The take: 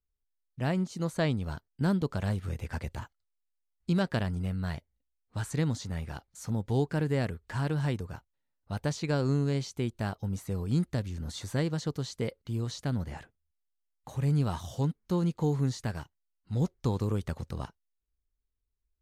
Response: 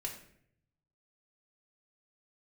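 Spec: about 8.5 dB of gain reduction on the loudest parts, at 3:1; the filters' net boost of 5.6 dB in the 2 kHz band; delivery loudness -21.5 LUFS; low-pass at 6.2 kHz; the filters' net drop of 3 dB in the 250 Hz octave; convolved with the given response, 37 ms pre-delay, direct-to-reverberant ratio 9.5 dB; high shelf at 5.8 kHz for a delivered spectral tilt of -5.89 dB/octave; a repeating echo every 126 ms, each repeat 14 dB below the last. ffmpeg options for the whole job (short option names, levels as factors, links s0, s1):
-filter_complex "[0:a]lowpass=6200,equalizer=f=250:t=o:g=-5,equalizer=f=2000:t=o:g=8,highshelf=f=5800:g=-7,acompressor=threshold=0.0158:ratio=3,aecho=1:1:126|252:0.2|0.0399,asplit=2[s0][s1];[1:a]atrim=start_sample=2205,adelay=37[s2];[s1][s2]afir=irnorm=-1:irlink=0,volume=0.335[s3];[s0][s3]amix=inputs=2:normalize=0,volume=7.94"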